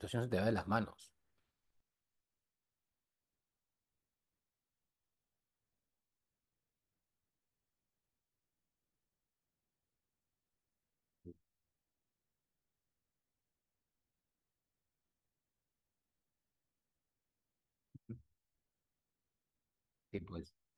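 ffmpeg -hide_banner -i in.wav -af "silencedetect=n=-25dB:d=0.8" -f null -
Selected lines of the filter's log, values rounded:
silence_start: 0.79
silence_end: 20.78 | silence_duration: 19.99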